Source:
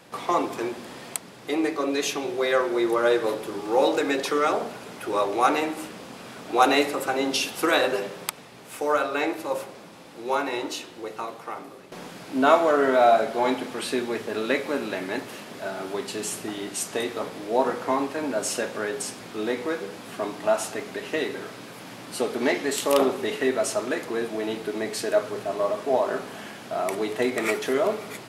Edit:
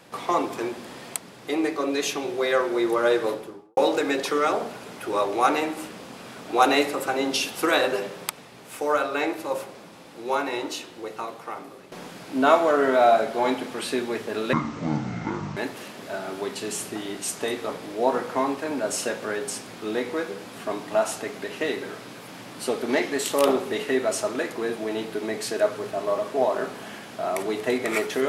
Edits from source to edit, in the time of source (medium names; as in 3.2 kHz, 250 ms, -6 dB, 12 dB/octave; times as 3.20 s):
3.22–3.77 s: studio fade out
14.53–15.09 s: speed 54%